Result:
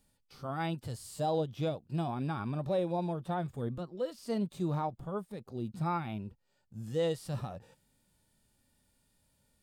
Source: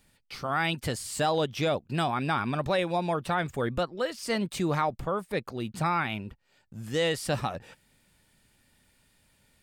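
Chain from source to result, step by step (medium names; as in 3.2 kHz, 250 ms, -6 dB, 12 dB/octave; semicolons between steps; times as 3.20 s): peaking EQ 2.1 kHz -9.5 dB 1.3 oct; harmonic-percussive split percussive -13 dB; dynamic bell 7 kHz, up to -4 dB, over -58 dBFS, Q 0.94; trim -2 dB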